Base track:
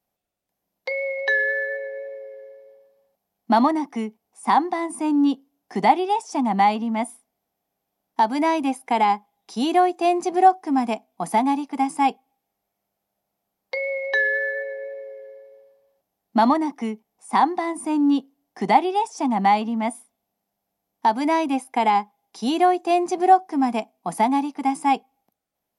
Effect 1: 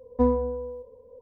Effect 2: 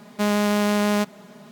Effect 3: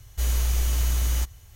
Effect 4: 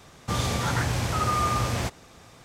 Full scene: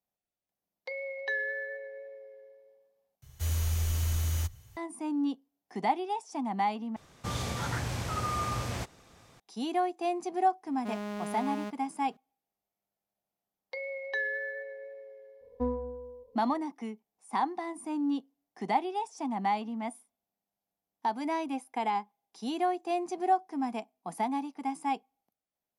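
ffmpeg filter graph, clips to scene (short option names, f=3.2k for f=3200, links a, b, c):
-filter_complex "[0:a]volume=-11.5dB[a];[3:a]afreqshift=22[b];[2:a]highshelf=f=3.9k:g=-9.5[c];[a]asplit=3[d][e][f];[d]atrim=end=3.224[g];[b]atrim=end=1.55,asetpts=PTS-STARTPTS,volume=-6.5dB[h];[e]atrim=start=4.766:end=6.964[i];[4:a]atrim=end=2.44,asetpts=PTS-STARTPTS,volume=-7.5dB[j];[f]atrim=start=9.396[k];[c]atrim=end=1.51,asetpts=PTS-STARTPTS,volume=-16dB,afade=t=in:d=0.004:c=hsin,afade=t=out:st=1.506:d=0.004:c=hsin,adelay=470106S[l];[1:a]atrim=end=1.21,asetpts=PTS-STARTPTS,volume=-10dB,afade=t=in:d=0.004:c=hsin,afade=t=out:st=1.206:d=0.004:c=hsin,adelay=15410[m];[g][h]acrossfade=d=0.004:c1=hsin:c2=hsin[n];[n][i]acrossfade=d=0.004:c1=hsin:c2=hsin[o];[o][j]acrossfade=d=0.004:c1=hsin:c2=hsin[p];[p][k]acrossfade=d=0.004:c1=hsin:c2=hsin[q];[q][l][m]amix=inputs=3:normalize=0"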